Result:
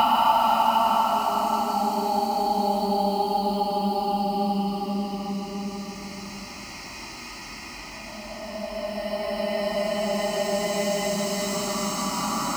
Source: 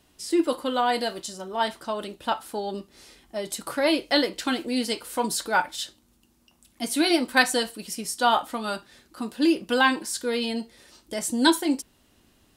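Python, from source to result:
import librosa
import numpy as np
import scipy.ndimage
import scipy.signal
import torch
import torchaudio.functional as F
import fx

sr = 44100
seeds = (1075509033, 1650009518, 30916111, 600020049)

p1 = fx.fixed_phaser(x, sr, hz=2400.0, stages=8)
p2 = fx.sample_hold(p1, sr, seeds[0], rate_hz=14000.0, jitter_pct=20)
p3 = p1 + (p2 * librosa.db_to_amplitude(-7.5))
p4 = fx.paulstretch(p3, sr, seeds[1], factor=9.6, window_s=0.5, from_s=2.32)
p5 = fx.echo_wet_bandpass(p4, sr, ms=153, feedback_pct=71, hz=820.0, wet_db=-7)
p6 = fx.band_squash(p5, sr, depth_pct=40)
y = p6 * librosa.db_to_amplitude(8.5)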